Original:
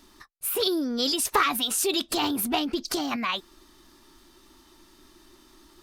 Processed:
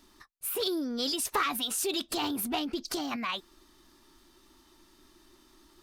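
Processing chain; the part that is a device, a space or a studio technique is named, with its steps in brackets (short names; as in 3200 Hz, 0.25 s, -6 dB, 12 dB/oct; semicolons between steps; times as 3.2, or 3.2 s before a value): parallel distortion (in parallel at -6 dB: hard clip -22.5 dBFS, distortion -12 dB); on the sum: gain -8.5 dB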